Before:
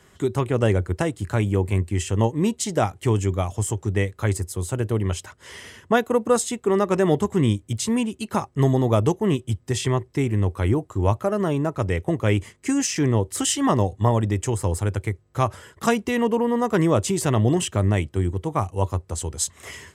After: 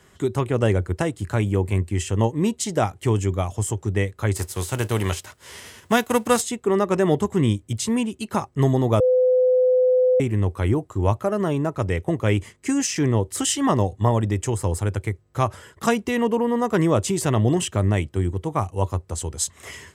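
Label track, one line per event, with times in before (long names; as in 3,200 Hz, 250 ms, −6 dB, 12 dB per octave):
4.350000	6.400000	spectral envelope flattened exponent 0.6
9.000000	10.200000	beep over 507 Hz −14 dBFS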